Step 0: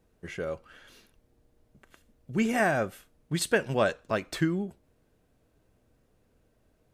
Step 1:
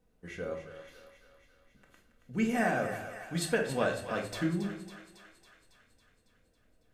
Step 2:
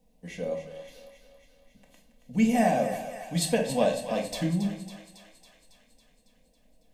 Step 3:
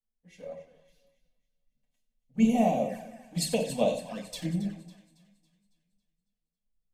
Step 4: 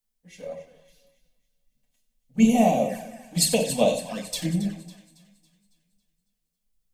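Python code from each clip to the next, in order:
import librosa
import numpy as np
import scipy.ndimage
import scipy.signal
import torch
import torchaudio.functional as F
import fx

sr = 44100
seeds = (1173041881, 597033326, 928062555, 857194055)

y1 = fx.echo_thinned(x, sr, ms=276, feedback_pct=66, hz=590.0, wet_db=-9.5)
y1 = fx.room_shoebox(y1, sr, seeds[0], volume_m3=570.0, walls='furnished', distance_m=1.9)
y1 = y1 * librosa.db_to_amplitude(-7.0)
y2 = fx.fixed_phaser(y1, sr, hz=370.0, stages=6)
y2 = y2 * librosa.db_to_amplitude(7.5)
y3 = fx.env_flanger(y2, sr, rest_ms=9.2, full_db=-22.0)
y3 = fx.echo_split(y3, sr, split_hz=320.0, low_ms=330, high_ms=93, feedback_pct=52, wet_db=-14.0)
y3 = fx.band_widen(y3, sr, depth_pct=70)
y3 = y3 * librosa.db_to_amplitude(-4.5)
y4 = fx.high_shelf(y3, sr, hz=3900.0, db=7.5)
y4 = y4 * librosa.db_to_amplitude(5.0)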